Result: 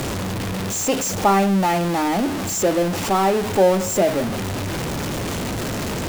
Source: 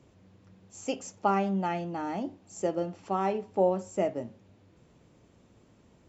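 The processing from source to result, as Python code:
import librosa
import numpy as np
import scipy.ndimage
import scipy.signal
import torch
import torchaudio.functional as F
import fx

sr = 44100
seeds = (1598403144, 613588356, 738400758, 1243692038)

y = x + 0.5 * 10.0 ** (-27.0 / 20.0) * np.sign(x)
y = y * librosa.db_to_amplitude(7.5)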